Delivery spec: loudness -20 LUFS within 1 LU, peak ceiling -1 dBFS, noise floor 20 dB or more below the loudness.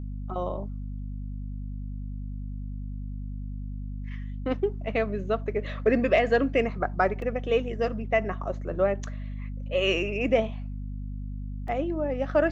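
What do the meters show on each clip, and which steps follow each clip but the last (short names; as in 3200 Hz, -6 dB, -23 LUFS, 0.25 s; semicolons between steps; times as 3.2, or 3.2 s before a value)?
dropouts 2; longest dropout 2.4 ms; hum 50 Hz; harmonics up to 250 Hz; hum level -32 dBFS; loudness -29.0 LUFS; peak -10.0 dBFS; loudness target -20.0 LUFS
-> interpolate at 7.22/11.68, 2.4 ms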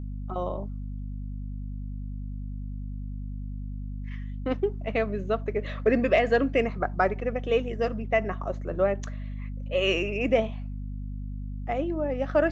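dropouts 0; hum 50 Hz; harmonics up to 250 Hz; hum level -32 dBFS
-> notches 50/100/150/200/250 Hz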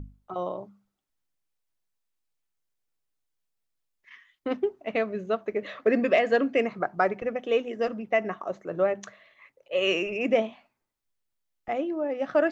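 hum none; loudness -27.5 LUFS; peak -10.5 dBFS; loudness target -20.0 LUFS
-> gain +7.5 dB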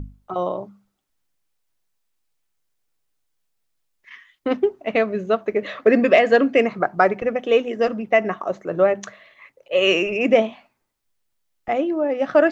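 loudness -20.0 LUFS; peak -3.0 dBFS; noise floor -73 dBFS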